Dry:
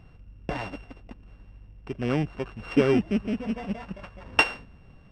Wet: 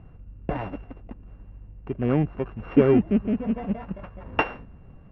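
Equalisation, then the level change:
low-pass filter 1,400 Hz 6 dB per octave
high-frequency loss of the air 310 metres
+4.5 dB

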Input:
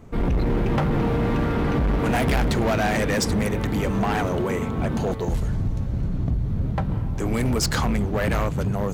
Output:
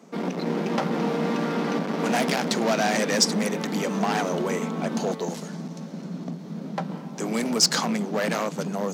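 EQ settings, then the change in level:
Chebyshev high-pass with heavy ripple 160 Hz, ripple 3 dB
parametric band 5,500 Hz +11 dB 1.2 octaves
0.0 dB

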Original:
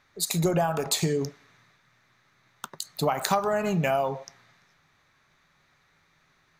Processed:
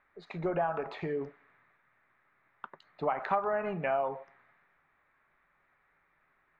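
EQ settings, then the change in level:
low-pass filter 2,200 Hz 24 dB per octave
parametric band 120 Hz −12 dB 2.1 octaves
−3.5 dB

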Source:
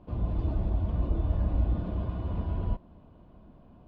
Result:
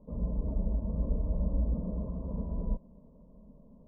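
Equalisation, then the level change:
Butterworth low-pass 860 Hz 36 dB per octave
phaser with its sweep stopped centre 500 Hz, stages 8
+1.5 dB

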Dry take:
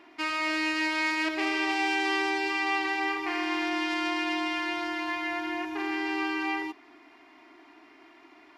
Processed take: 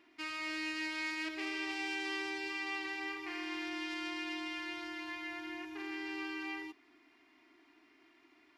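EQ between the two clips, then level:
parametric band 760 Hz −8.5 dB 1.7 octaves
−8.0 dB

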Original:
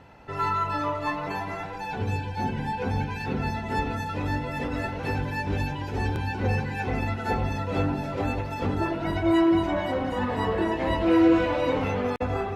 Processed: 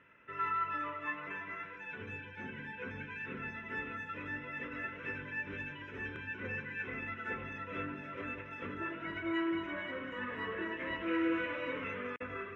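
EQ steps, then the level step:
high-pass filter 1,200 Hz 6 dB per octave
high-frequency loss of the air 240 metres
phaser with its sweep stopped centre 1,900 Hz, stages 4
0.0 dB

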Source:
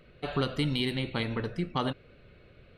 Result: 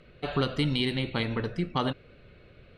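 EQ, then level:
high-frequency loss of the air 66 metres
high-shelf EQ 6,100 Hz +7.5 dB
+2.0 dB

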